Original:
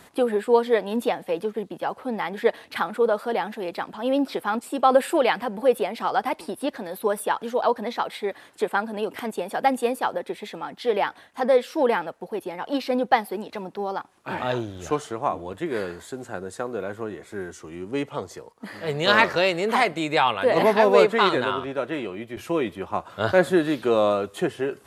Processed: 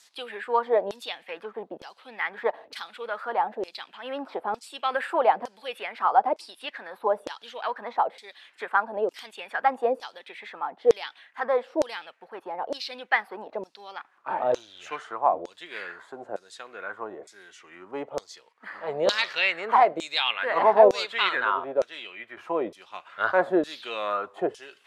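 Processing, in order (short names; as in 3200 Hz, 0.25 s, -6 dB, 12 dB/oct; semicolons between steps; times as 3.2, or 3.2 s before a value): LFO band-pass saw down 1.1 Hz 480–6100 Hz; gain +5.5 dB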